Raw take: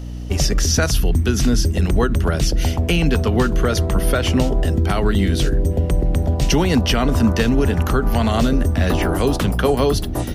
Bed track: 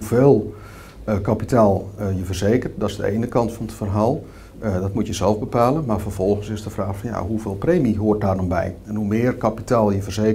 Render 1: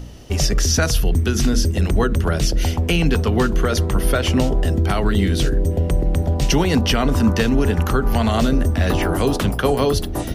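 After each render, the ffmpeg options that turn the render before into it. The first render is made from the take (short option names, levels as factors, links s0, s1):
-af "bandreject=f=60:t=h:w=4,bandreject=f=120:t=h:w=4,bandreject=f=180:t=h:w=4,bandreject=f=240:t=h:w=4,bandreject=f=300:t=h:w=4,bandreject=f=360:t=h:w=4,bandreject=f=420:t=h:w=4,bandreject=f=480:t=h:w=4,bandreject=f=540:t=h:w=4,bandreject=f=600:t=h:w=4,bandreject=f=660:t=h:w=4"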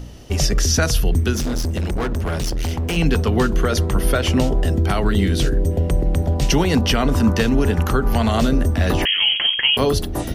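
-filter_complex "[0:a]asettb=1/sr,asplit=3[s0][s1][s2];[s0]atrim=end=1.354[s3];[s1]atrim=start=1.35:end=2.97,asetpts=PTS-STARTPTS,afade=t=in:d=0.004:c=qsin,afade=t=out:st=1.616:d=0.004:c=qsin,volume=8.91,asoftclip=hard,volume=0.112[s4];[s2]atrim=start=2.966[s5];[s3][s4]acrossfade=d=0.004:c1=hsin:c2=qsin[s6];[s6][s5]acrossfade=d=0.004:c1=qsin:c2=hsin,asettb=1/sr,asplit=3[s7][s8][s9];[s7]atrim=end=9.054[s10];[s8]atrim=start=9.05:end=9.77,asetpts=PTS-STARTPTS,afade=t=in:d=0.004:c=qsin,afade=t=out:st=0.716:d=0.004:c=qsin,lowpass=f=2800:t=q:w=0.5098,lowpass=f=2800:t=q:w=0.6013,lowpass=f=2800:t=q:w=0.9,lowpass=f=2800:t=q:w=2.563,afreqshift=-3300[s11];[s9]atrim=start=9.766[s12];[s10][s11]acrossfade=d=0.004:c1=hsin:c2=qsin[s13];[s13][s12]acrossfade=d=0.004:c1=qsin:c2=hsin"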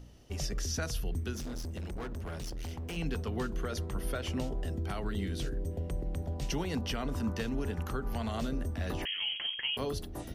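-af "volume=0.141"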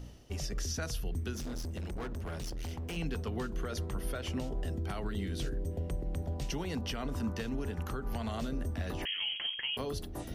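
-af "alimiter=level_in=1.26:limit=0.0631:level=0:latency=1:release=187,volume=0.794,areverse,acompressor=mode=upward:threshold=0.0126:ratio=2.5,areverse"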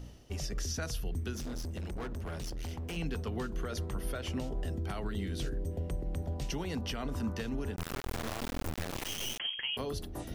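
-filter_complex "[0:a]asettb=1/sr,asplit=3[s0][s1][s2];[s0]atrim=end=7.764[s3];[s1]atrim=start=7.76:end=9.4,asetpts=PTS-STARTPTS,afade=t=in:d=0.004:c=qsin,afade=t=out:st=1.636:d=0.004:c=qsin,acrusher=bits=3:dc=4:mix=0:aa=0.000001[s4];[s2]atrim=start=9.396[s5];[s3][s4]acrossfade=d=0.004:c1=hsin:c2=qsin[s6];[s6][s5]acrossfade=d=0.004:c1=qsin:c2=hsin"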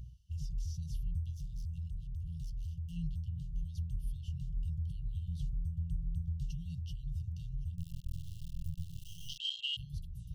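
-af "afwtdn=0.0126,afftfilt=real='re*(1-between(b*sr/4096,180,2700))':imag='im*(1-between(b*sr/4096,180,2700))':win_size=4096:overlap=0.75"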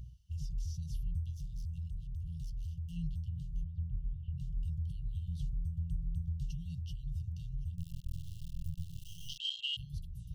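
-filter_complex "[0:a]asettb=1/sr,asplit=3[s0][s1][s2];[s0]atrim=end=3.634[s3];[s1]atrim=start=3.63:end=4.38,asetpts=PTS-STARTPTS,afade=t=in:d=0.004:c=qsin,afade=t=out:st=0.746:d=0.004:c=qsin,lowpass=f=2100:w=0.5412,lowpass=f=2100:w=1.3066[s4];[s2]atrim=start=4.376[s5];[s3][s4]acrossfade=d=0.004:c1=hsin:c2=qsin[s6];[s6][s5]acrossfade=d=0.004:c1=qsin:c2=hsin"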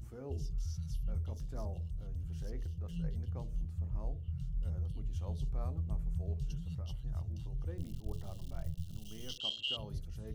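-filter_complex "[1:a]volume=0.0237[s0];[0:a][s0]amix=inputs=2:normalize=0"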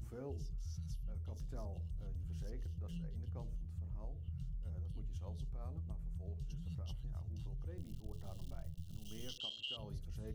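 -af "alimiter=level_in=2.37:limit=0.0631:level=0:latency=1:release=455,volume=0.422,acompressor=threshold=0.01:ratio=6"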